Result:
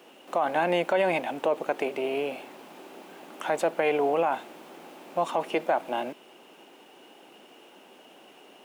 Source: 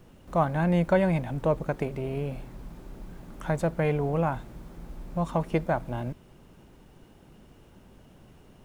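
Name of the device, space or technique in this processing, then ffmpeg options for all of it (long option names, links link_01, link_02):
laptop speaker: -af "highpass=frequency=300:width=0.5412,highpass=frequency=300:width=1.3066,equalizer=frequency=770:width_type=o:width=0.43:gain=5,equalizer=frequency=2800:width_type=o:width=0.6:gain=8.5,alimiter=limit=-20dB:level=0:latency=1:release=53,volume=5dB"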